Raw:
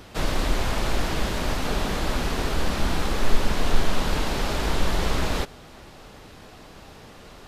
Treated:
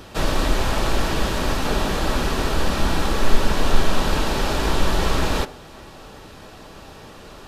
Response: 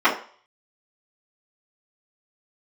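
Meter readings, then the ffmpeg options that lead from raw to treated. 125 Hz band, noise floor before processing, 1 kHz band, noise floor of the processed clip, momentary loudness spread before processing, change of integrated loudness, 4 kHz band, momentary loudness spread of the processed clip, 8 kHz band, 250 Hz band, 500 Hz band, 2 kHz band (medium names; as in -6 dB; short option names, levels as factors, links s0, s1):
+3.5 dB, -46 dBFS, +5.0 dB, -42 dBFS, 20 LU, +4.0 dB, +4.0 dB, 19 LU, +3.5 dB, +4.0 dB, +4.5 dB, +3.5 dB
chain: -filter_complex "[0:a]bandreject=f=2100:w=14,asplit=2[s0][s1];[1:a]atrim=start_sample=2205[s2];[s1][s2]afir=irnorm=-1:irlink=0,volume=0.0316[s3];[s0][s3]amix=inputs=2:normalize=0,volume=1.5"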